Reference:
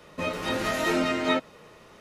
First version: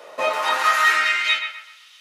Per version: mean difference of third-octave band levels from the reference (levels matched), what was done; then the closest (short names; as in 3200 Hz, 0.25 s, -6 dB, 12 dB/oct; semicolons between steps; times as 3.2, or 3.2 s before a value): 10.5 dB: high-pass sweep 580 Hz -> 3200 Hz, 0.06–1.53; on a send: narrowing echo 0.127 s, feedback 41%, band-pass 1300 Hz, level -5.5 dB; on the sum: gain +6.5 dB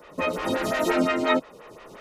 4.0 dB: recorder AGC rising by 8.2 dB/s; photocell phaser 5.7 Hz; gain +5 dB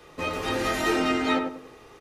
2.5 dB: comb 2.5 ms, depth 51%; on a send: darkening echo 96 ms, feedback 36%, low-pass 1000 Hz, level -3.5 dB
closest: third